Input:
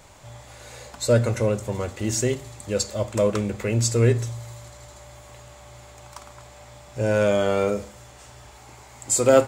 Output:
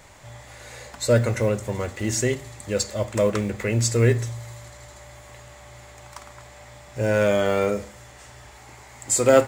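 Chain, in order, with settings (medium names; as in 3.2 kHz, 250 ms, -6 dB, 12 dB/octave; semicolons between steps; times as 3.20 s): block-companded coder 7-bit; peaking EQ 1.9 kHz +6.5 dB 0.43 oct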